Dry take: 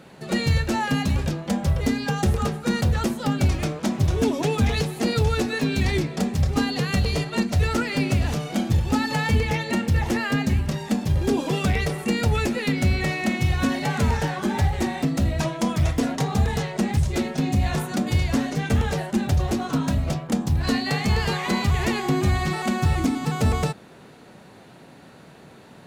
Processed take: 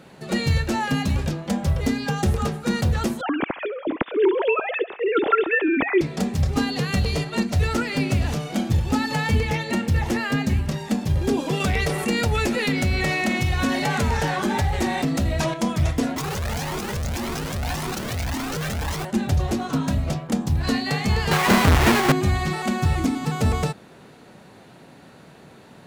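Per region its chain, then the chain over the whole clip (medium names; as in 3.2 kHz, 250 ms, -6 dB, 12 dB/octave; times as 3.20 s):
3.21–6.01 s: formants replaced by sine waves + thinning echo 68 ms, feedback 76%, high-pass 1 kHz, level -18 dB
11.60–15.54 s: peaking EQ 140 Hz -4 dB 2.2 oct + level flattener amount 50%
16.16–19.05 s: peaking EQ 6 kHz +9 dB 0.69 oct + Schmitt trigger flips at -35 dBFS + Shepard-style flanger rising 1.8 Hz
21.31–22.12 s: square wave that keeps the level + peaking EQ 1.5 kHz +6 dB 2.3 oct
whole clip: none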